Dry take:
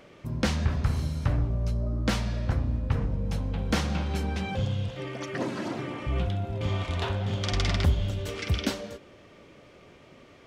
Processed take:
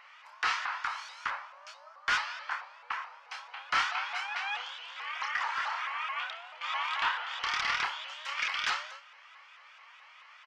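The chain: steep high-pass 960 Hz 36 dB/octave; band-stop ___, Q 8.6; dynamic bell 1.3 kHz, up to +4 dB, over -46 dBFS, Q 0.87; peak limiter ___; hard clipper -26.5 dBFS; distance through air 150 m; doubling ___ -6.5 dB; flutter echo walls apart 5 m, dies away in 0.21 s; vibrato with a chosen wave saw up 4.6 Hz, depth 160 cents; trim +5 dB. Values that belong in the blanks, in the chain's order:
3.8 kHz, -19 dBFS, 27 ms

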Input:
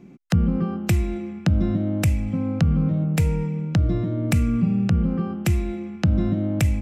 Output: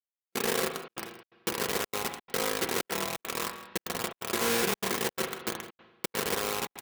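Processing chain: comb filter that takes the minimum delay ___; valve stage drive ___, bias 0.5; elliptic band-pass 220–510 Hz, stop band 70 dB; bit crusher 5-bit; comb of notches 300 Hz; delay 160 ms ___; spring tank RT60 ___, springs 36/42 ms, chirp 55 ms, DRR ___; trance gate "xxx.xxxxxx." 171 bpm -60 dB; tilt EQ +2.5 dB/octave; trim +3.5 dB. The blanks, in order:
1.6 ms, 12 dB, -17.5 dB, 1 s, 5.5 dB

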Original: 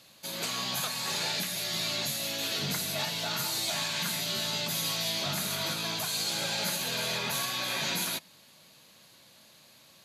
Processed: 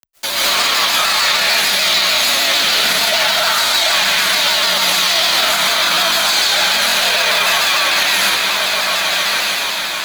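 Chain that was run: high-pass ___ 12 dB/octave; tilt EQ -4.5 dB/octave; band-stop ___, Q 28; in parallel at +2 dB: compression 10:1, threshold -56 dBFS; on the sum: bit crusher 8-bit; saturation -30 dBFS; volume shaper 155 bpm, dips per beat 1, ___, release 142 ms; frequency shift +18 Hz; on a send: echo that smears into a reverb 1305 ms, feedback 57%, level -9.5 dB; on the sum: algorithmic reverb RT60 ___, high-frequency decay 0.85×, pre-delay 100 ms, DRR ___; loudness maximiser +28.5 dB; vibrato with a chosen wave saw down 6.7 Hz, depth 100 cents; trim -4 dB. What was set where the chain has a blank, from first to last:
1.4 kHz, 2.7 kHz, -7 dB, 0.99 s, -7.5 dB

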